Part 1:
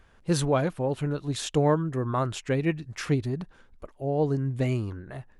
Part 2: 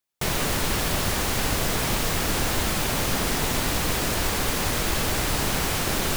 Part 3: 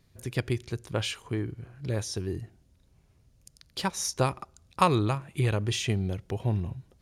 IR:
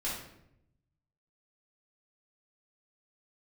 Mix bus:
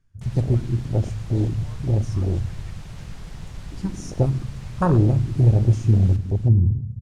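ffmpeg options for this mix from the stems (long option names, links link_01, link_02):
-filter_complex "[0:a]highpass=1100,volume=-3.5dB[link_01];[1:a]volume=-5.5dB,asplit=2[link_02][link_03];[link_03]volume=-7.5dB[link_04];[2:a]aemphasis=mode=reproduction:type=riaa,aexciter=amount=10.2:drive=6.9:freq=5400,volume=-2dB,asplit=3[link_05][link_06][link_07];[link_06]volume=-10.5dB[link_08];[link_07]volume=-23dB[link_09];[3:a]atrim=start_sample=2205[link_10];[link_08][link_10]afir=irnorm=-1:irlink=0[link_11];[link_04][link_09]amix=inputs=2:normalize=0,aecho=0:1:321:1[link_12];[link_01][link_02][link_05][link_11][link_12]amix=inputs=5:normalize=0,afwtdn=0.1,lowpass=7700"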